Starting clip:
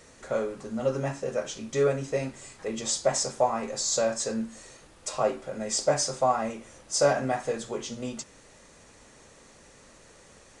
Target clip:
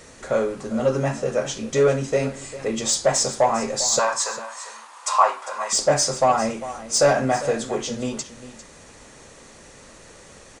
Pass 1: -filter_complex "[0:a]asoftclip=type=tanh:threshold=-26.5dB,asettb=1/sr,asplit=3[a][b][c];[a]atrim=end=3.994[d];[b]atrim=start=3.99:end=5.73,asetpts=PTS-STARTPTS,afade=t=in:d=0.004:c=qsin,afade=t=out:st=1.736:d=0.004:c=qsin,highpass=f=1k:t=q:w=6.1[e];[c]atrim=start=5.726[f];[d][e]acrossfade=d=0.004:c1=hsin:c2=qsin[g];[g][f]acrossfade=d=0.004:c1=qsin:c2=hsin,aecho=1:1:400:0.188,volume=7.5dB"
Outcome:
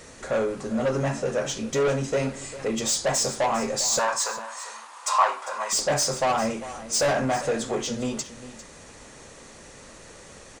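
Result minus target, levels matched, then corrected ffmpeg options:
soft clip: distortion +11 dB
-filter_complex "[0:a]asoftclip=type=tanh:threshold=-16dB,asettb=1/sr,asplit=3[a][b][c];[a]atrim=end=3.994[d];[b]atrim=start=3.99:end=5.73,asetpts=PTS-STARTPTS,afade=t=in:d=0.004:c=qsin,afade=t=out:st=1.736:d=0.004:c=qsin,highpass=f=1k:t=q:w=6.1[e];[c]atrim=start=5.726[f];[d][e]acrossfade=d=0.004:c1=hsin:c2=qsin[g];[g][f]acrossfade=d=0.004:c1=qsin:c2=hsin,aecho=1:1:400:0.188,volume=7.5dB"

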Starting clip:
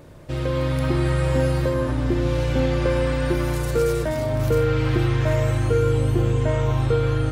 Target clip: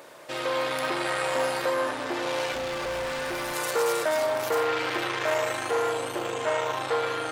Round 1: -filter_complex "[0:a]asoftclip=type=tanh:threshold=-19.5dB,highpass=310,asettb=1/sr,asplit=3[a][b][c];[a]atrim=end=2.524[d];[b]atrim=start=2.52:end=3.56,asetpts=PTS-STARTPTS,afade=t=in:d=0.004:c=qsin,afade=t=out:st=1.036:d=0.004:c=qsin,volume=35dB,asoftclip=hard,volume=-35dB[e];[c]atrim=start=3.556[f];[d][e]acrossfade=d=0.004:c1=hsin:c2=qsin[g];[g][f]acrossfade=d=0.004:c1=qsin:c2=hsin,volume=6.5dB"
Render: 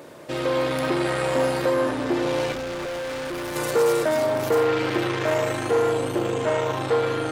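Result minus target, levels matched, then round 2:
250 Hz band +6.0 dB
-filter_complex "[0:a]asoftclip=type=tanh:threshold=-19.5dB,highpass=670,asettb=1/sr,asplit=3[a][b][c];[a]atrim=end=2.524[d];[b]atrim=start=2.52:end=3.56,asetpts=PTS-STARTPTS,afade=t=in:d=0.004:c=qsin,afade=t=out:st=1.036:d=0.004:c=qsin,volume=35dB,asoftclip=hard,volume=-35dB[e];[c]atrim=start=3.556[f];[d][e]acrossfade=d=0.004:c1=hsin:c2=qsin[g];[g][f]acrossfade=d=0.004:c1=qsin:c2=hsin,volume=6.5dB"

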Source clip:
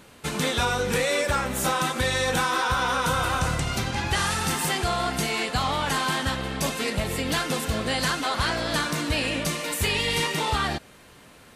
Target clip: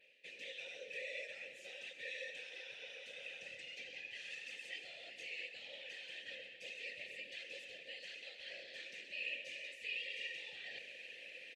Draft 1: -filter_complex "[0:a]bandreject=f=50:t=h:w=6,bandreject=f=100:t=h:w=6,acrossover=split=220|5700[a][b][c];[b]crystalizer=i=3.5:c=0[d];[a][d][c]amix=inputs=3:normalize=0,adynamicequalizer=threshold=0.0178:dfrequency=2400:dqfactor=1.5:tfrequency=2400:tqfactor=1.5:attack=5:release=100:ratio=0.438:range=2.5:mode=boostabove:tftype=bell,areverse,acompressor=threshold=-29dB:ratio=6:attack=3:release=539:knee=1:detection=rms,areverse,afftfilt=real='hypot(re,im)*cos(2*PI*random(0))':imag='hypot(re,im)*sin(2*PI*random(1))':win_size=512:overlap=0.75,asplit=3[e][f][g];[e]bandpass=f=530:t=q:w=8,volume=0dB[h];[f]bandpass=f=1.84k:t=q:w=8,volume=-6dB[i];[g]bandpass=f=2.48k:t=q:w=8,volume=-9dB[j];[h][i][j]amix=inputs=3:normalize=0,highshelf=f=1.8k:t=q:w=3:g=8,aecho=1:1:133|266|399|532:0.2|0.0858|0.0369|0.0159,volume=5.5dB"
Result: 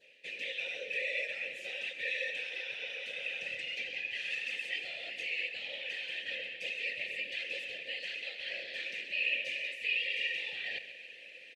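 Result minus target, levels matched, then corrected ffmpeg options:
8000 Hz band -7.0 dB; compressor: peak gain reduction -7 dB
-filter_complex "[0:a]bandreject=f=50:t=h:w=6,bandreject=f=100:t=h:w=6,acrossover=split=220|5700[a][b][c];[b]crystalizer=i=3.5:c=0[d];[a][d][c]amix=inputs=3:normalize=0,adynamicequalizer=threshold=0.0178:dfrequency=6800:dqfactor=1.5:tfrequency=6800:tqfactor=1.5:attack=5:release=100:ratio=0.438:range=2.5:mode=boostabove:tftype=bell,areverse,acompressor=threshold=-38.5dB:ratio=6:attack=3:release=539:knee=1:detection=rms,areverse,afftfilt=real='hypot(re,im)*cos(2*PI*random(0))':imag='hypot(re,im)*sin(2*PI*random(1))':win_size=512:overlap=0.75,asplit=3[e][f][g];[e]bandpass=f=530:t=q:w=8,volume=0dB[h];[f]bandpass=f=1.84k:t=q:w=8,volume=-6dB[i];[g]bandpass=f=2.48k:t=q:w=8,volume=-9dB[j];[h][i][j]amix=inputs=3:normalize=0,highshelf=f=1.8k:t=q:w=3:g=8,aecho=1:1:133|266|399|532:0.2|0.0858|0.0369|0.0159,volume=5.5dB"

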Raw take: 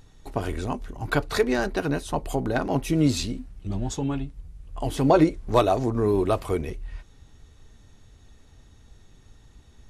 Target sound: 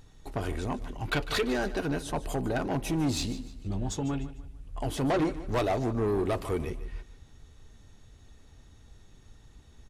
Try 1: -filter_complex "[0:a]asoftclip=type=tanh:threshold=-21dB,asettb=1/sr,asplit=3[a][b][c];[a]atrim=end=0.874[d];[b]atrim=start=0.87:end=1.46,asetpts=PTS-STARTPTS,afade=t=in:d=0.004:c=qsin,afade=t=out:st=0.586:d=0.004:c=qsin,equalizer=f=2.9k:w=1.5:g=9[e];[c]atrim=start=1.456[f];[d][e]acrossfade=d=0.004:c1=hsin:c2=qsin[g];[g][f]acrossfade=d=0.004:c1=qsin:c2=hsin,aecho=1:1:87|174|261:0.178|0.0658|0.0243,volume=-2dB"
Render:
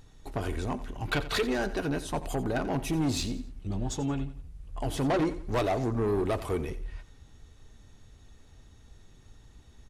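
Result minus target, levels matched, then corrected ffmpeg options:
echo 63 ms early
-filter_complex "[0:a]asoftclip=type=tanh:threshold=-21dB,asettb=1/sr,asplit=3[a][b][c];[a]atrim=end=0.874[d];[b]atrim=start=0.87:end=1.46,asetpts=PTS-STARTPTS,afade=t=in:d=0.004:c=qsin,afade=t=out:st=0.586:d=0.004:c=qsin,equalizer=f=2.9k:w=1.5:g=9[e];[c]atrim=start=1.456[f];[d][e]acrossfade=d=0.004:c1=hsin:c2=qsin[g];[g][f]acrossfade=d=0.004:c1=qsin:c2=hsin,aecho=1:1:150|300|450:0.178|0.0658|0.0243,volume=-2dB"

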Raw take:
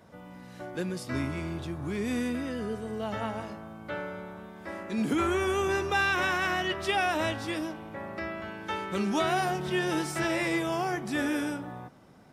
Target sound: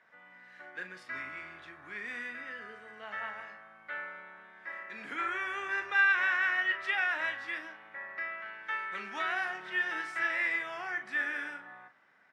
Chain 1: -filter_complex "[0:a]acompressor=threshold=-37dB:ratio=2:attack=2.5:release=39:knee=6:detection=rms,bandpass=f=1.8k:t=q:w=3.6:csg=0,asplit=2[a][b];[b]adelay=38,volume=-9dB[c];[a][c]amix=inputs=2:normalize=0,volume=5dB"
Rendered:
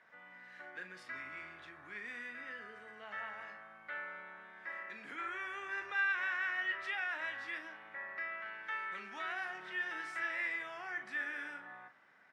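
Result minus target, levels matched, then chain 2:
compressor: peak gain reduction +8.5 dB
-filter_complex "[0:a]bandpass=f=1.8k:t=q:w=3.6:csg=0,asplit=2[a][b];[b]adelay=38,volume=-9dB[c];[a][c]amix=inputs=2:normalize=0,volume=5dB"

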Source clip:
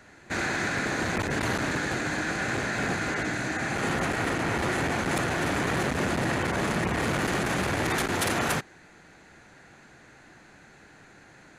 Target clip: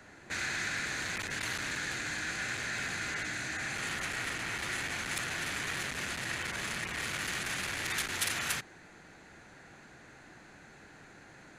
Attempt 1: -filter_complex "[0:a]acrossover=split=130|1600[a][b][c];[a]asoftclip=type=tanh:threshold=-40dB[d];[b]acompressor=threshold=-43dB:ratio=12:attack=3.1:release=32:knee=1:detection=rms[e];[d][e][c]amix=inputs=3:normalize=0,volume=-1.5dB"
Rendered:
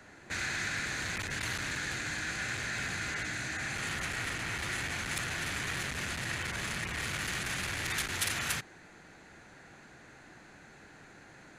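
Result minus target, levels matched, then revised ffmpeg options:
soft clip: distortion -5 dB
-filter_complex "[0:a]acrossover=split=130|1600[a][b][c];[a]asoftclip=type=tanh:threshold=-48.5dB[d];[b]acompressor=threshold=-43dB:ratio=12:attack=3.1:release=32:knee=1:detection=rms[e];[d][e][c]amix=inputs=3:normalize=0,volume=-1.5dB"

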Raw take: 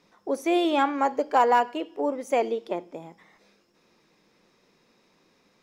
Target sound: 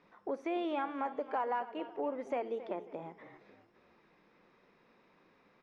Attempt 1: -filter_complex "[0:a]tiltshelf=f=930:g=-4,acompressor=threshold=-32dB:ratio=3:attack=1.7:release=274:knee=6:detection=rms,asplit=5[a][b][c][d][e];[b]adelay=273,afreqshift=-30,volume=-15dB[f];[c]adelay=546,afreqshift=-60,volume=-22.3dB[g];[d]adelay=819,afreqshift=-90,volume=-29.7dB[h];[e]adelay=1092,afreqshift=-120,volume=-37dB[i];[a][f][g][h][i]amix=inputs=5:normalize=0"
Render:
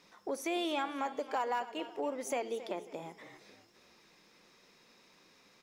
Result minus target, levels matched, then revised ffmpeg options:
2000 Hz band +3.0 dB
-filter_complex "[0:a]tiltshelf=f=930:g=-4,acompressor=threshold=-32dB:ratio=3:attack=1.7:release=274:knee=6:detection=rms,lowpass=1.8k,asplit=5[a][b][c][d][e];[b]adelay=273,afreqshift=-30,volume=-15dB[f];[c]adelay=546,afreqshift=-60,volume=-22.3dB[g];[d]adelay=819,afreqshift=-90,volume=-29.7dB[h];[e]adelay=1092,afreqshift=-120,volume=-37dB[i];[a][f][g][h][i]amix=inputs=5:normalize=0"

